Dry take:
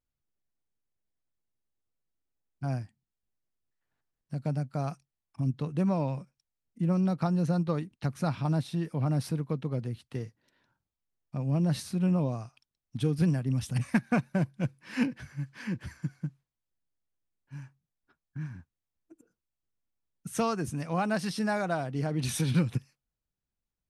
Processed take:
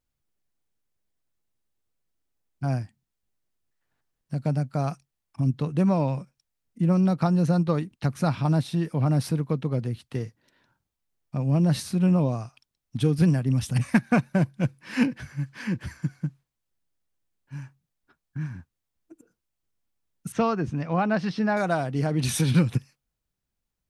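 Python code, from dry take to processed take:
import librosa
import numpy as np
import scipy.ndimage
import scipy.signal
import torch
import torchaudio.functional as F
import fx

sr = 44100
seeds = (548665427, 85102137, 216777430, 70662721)

y = fx.air_absorb(x, sr, metres=200.0, at=(20.32, 21.57))
y = y * 10.0 ** (5.5 / 20.0)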